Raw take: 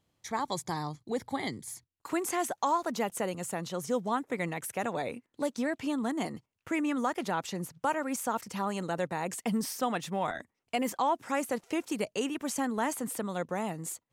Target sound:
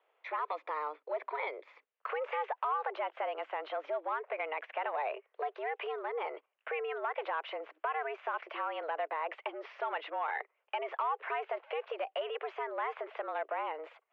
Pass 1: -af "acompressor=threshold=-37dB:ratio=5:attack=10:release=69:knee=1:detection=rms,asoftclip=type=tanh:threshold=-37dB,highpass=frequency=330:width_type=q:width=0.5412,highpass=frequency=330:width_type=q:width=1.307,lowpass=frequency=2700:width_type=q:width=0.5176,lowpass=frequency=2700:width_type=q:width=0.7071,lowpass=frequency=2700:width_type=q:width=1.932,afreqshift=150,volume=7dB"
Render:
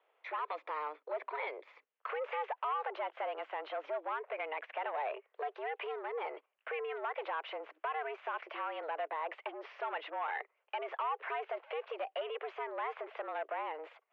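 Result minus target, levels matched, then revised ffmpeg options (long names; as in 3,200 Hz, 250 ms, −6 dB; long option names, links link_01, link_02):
soft clipping: distortion +8 dB
-af "acompressor=threshold=-37dB:ratio=5:attack=10:release=69:knee=1:detection=rms,asoftclip=type=tanh:threshold=-30.5dB,highpass=frequency=330:width_type=q:width=0.5412,highpass=frequency=330:width_type=q:width=1.307,lowpass=frequency=2700:width_type=q:width=0.5176,lowpass=frequency=2700:width_type=q:width=0.7071,lowpass=frequency=2700:width_type=q:width=1.932,afreqshift=150,volume=7dB"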